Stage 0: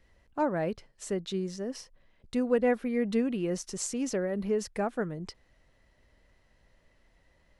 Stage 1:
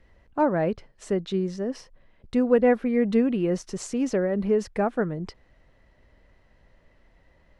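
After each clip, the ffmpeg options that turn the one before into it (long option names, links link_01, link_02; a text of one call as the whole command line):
ffmpeg -i in.wav -af "lowpass=frequency=2200:poles=1,volume=6.5dB" out.wav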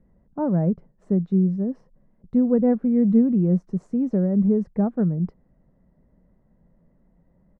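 ffmpeg -i in.wav -af "firequalizer=gain_entry='entry(110,0);entry(170,15);entry(310,2);entry(2900,-25)':delay=0.05:min_phase=1,volume=-3.5dB" out.wav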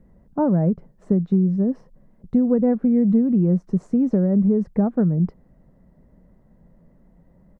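ffmpeg -i in.wav -af "acompressor=threshold=-22dB:ratio=4,volume=6.5dB" out.wav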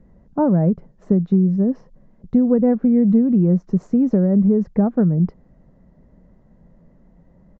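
ffmpeg -i in.wav -af "aresample=16000,aresample=44100,volume=2.5dB" out.wav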